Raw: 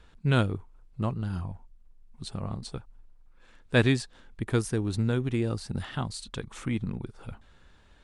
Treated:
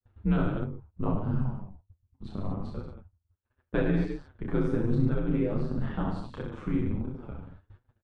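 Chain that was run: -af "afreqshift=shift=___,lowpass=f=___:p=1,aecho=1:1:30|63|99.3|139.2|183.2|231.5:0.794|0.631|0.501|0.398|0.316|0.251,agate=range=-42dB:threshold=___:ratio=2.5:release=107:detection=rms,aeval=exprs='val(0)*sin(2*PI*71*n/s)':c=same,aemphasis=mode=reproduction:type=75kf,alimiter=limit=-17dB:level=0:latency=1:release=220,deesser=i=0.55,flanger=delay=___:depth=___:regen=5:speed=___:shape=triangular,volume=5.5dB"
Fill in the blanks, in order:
-30, 1100, -46dB, 7.6, 3.6, 1.4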